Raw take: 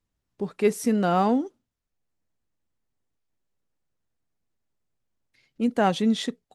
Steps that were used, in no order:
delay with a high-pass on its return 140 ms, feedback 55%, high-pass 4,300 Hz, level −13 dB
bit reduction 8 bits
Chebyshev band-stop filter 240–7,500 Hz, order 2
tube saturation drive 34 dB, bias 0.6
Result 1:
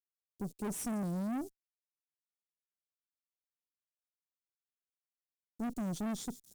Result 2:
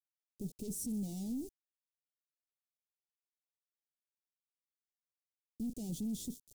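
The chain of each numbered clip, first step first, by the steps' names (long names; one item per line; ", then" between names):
delay with a high-pass on its return, then bit reduction, then Chebyshev band-stop filter, then tube saturation
delay with a high-pass on its return, then tube saturation, then bit reduction, then Chebyshev band-stop filter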